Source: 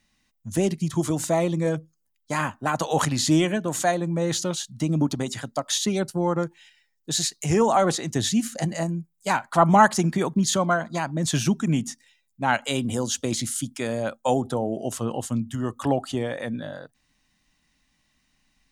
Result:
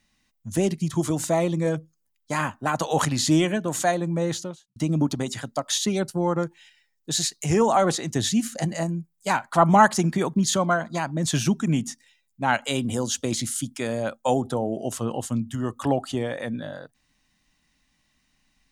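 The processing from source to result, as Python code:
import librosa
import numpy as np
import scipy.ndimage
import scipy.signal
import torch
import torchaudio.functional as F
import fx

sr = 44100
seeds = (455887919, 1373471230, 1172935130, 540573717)

y = fx.studio_fade_out(x, sr, start_s=4.18, length_s=0.58)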